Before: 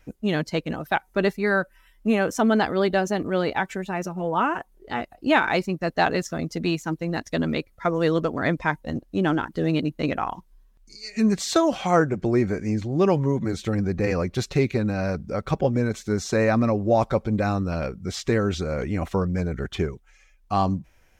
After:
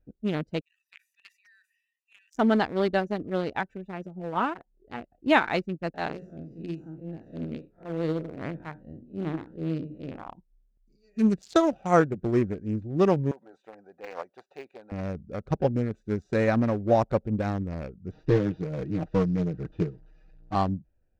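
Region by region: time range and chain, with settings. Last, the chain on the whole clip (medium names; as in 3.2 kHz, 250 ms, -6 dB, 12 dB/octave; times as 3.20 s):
0.61–2.35 s: rippled Chebyshev high-pass 1.8 kHz, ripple 6 dB + treble shelf 4.4 kHz +8.5 dB + decay stretcher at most 52 dB/s
5.94–10.28 s: spectral blur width 114 ms + hum notches 60/120/180/240/300/360/420/480 Hz
13.31–14.92 s: de-esser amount 95% + resonant high-pass 820 Hz, resonance Q 2.9
18.11–20.55 s: one-bit delta coder 32 kbps, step -38.5 dBFS + comb 6.4 ms, depth 89%
whole clip: local Wiener filter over 41 samples; upward expansion 1.5:1, over -36 dBFS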